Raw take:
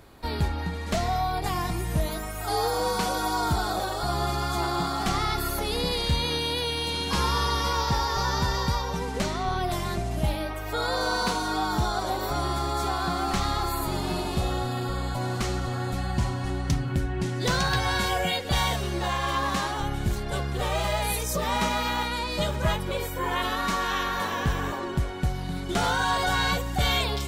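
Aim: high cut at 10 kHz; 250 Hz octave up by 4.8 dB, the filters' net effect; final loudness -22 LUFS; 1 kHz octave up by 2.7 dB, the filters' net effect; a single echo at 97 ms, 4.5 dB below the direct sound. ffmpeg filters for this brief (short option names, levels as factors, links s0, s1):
-af "lowpass=10000,equalizer=f=250:t=o:g=6.5,equalizer=f=1000:t=o:g=3,aecho=1:1:97:0.596,volume=1.19"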